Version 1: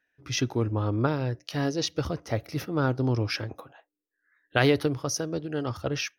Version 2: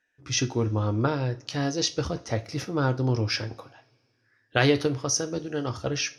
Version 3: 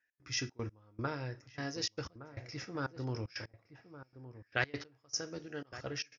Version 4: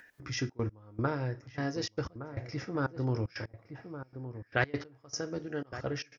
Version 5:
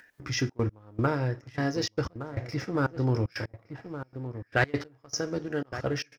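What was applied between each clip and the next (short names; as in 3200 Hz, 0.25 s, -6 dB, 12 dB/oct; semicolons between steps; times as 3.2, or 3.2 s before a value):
synth low-pass 7300 Hz, resonance Q 2; two-slope reverb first 0.28 s, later 2.4 s, from -28 dB, DRR 7.5 dB
rippled Chebyshev low-pass 7100 Hz, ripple 9 dB; step gate "x.xxx.x...xxxx" 152 bpm -24 dB; outdoor echo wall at 200 m, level -13 dB; gain -4.5 dB
high shelf 2200 Hz -11.5 dB; notch 2600 Hz, Q 23; in parallel at +2 dB: upward compressor, threshold -40 dBFS
sample leveller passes 1; gain +1.5 dB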